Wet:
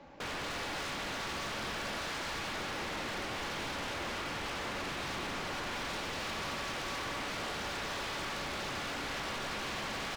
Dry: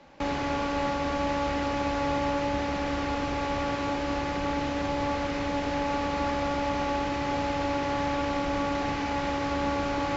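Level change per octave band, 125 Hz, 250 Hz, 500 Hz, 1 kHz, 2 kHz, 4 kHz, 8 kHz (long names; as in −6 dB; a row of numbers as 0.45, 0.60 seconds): −11.0 dB, −15.0 dB, −12.5 dB, −10.5 dB, −3.0 dB, 0.0 dB, can't be measured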